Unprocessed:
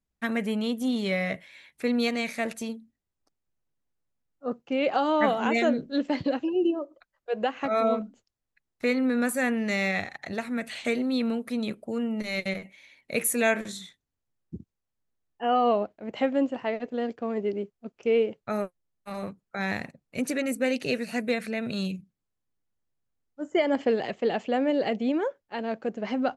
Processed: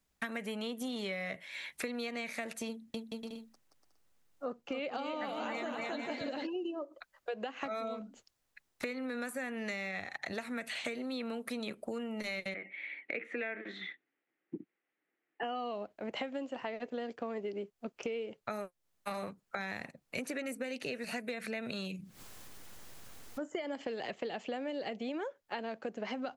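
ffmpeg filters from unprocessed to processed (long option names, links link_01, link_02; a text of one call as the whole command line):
ffmpeg -i in.wav -filter_complex "[0:a]asettb=1/sr,asplit=3[link_01][link_02][link_03];[link_01]atrim=end=2.674[link_04];[link_02]atrim=start=2.67:end=6.47,asetpts=PTS-STARTPTS,afade=type=in:duration=0.004:curve=qsin,afade=type=out:start_time=3.796:duration=0.004:curve=qsin,aecho=1:1:270|445.5|559.6|633.7|681.9:0.631|0.398|0.251|0.158|0.1,atrim=end_sample=167580[link_05];[link_03]atrim=start=6.466[link_06];[link_04][link_05]acrossfade=duration=0.004:curve1=hsin:curve2=qsin[link_07];[link_07][link_06]acrossfade=duration=0.004:curve1=qsin:curve2=hsin,asettb=1/sr,asplit=3[link_08][link_09][link_10];[link_08]atrim=end=12.544[link_11];[link_09]atrim=start=12.54:end=15.43,asetpts=PTS-STARTPTS,afade=type=in:duration=0.004:curve=qsin,afade=type=out:start_time=2.886:duration=0.004:curve=qsin,highpass=frequency=210:width=0.5412,highpass=frequency=210:width=1.3066,equalizer=frequency=220:width_type=q:width=4:gain=-6,equalizer=frequency=320:width_type=q:width=4:gain=8,equalizer=frequency=610:width_type=q:width=4:gain=-4,equalizer=frequency=1000:width_type=q:width=4:gain=-9,equalizer=frequency=2000:width_type=q:width=4:gain=7,lowpass=frequency=2600:width=0.5412,lowpass=frequency=2600:width=1.3066[link_12];[link_10]atrim=start=15.426[link_13];[link_11][link_12]acrossfade=duration=0.004:curve1=hsin:curve2=qsin[link_14];[link_14][link_13]acrossfade=duration=0.004:curve1=qsin:curve2=hsin,asettb=1/sr,asplit=3[link_15][link_16][link_17];[link_15]atrim=end=21.044[link_18];[link_16]atrim=start=21.04:end=23.44,asetpts=PTS-STARTPTS,afade=type=in:duration=0.004:curve=qsin,afade=type=out:start_time=2.396:duration=0.004:curve=qsin,acompressor=mode=upward:threshold=-31dB:ratio=2.5:attack=3.2:release=140:knee=2.83:detection=peak[link_19];[link_17]atrim=start=23.436[link_20];[link_18][link_19]acrossfade=duration=0.004:curve1=hsin:curve2=qsin[link_21];[link_21][link_20]acrossfade=duration=0.004:curve1=qsin:curve2=hsin,acrossover=split=340|2900[link_22][link_23][link_24];[link_22]acompressor=threshold=-33dB:ratio=4[link_25];[link_23]acompressor=threshold=-31dB:ratio=4[link_26];[link_24]acompressor=threshold=-45dB:ratio=4[link_27];[link_25][link_26][link_27]amix=inputs=3:normalize=0,lowshelf=frequency=360:gain=-9,acompressor=threshold=-48dB:ratio=5,volume=10.5dB" out.wav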